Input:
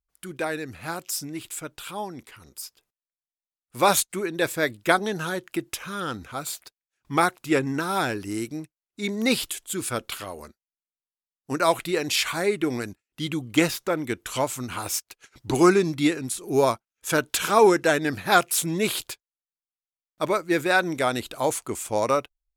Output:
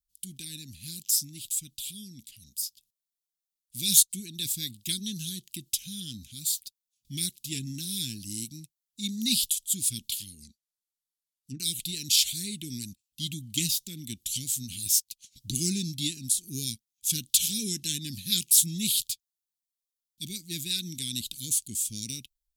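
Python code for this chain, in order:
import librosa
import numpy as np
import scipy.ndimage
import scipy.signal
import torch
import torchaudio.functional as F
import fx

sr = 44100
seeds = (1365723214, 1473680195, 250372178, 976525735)

y = scipy.signal.sosfilt(scipy.signal.ellip(3, 1.0, 70, [220.0, 3400.0], 'bandstop', fs=sr, output='sos'), x)
y = fx.env_lowpass_down(y, sr, base_hz=1300.0, full_db=-33.0, at=(10.3, 11.6))
y = fx.high_shelf(y, sr, hz=2800.0, db=10.5)
y = F.gain(torch.from_numpy(y), -3.5).numpy()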